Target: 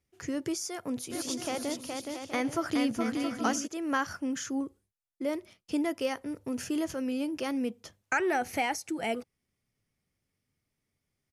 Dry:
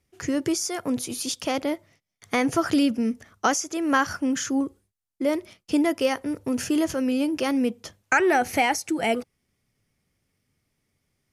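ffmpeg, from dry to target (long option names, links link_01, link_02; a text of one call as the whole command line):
ffmpeg -i in.wav -filter_complex "[0:a]asplit=3[link_01][link_02][link_03];[link_01]afade=type=out:start_time=1.1:duration=0.02[link_04];[link_02]aecho=1:1:420|672|823.2|913.9|968.4:0.631|0.398|0.251|0.158|0.1,afade=type=in:start_time=1.1:duration=0.02,afade=type=out:start_time=3.66:duration=0.02[link_05];[link_03]afade=type=in:start_time=3.66:duration=0.02[link_06];[link_04][link_05][link_06]amix=inputs=3:normalize=0,volume=-8dB" out.wav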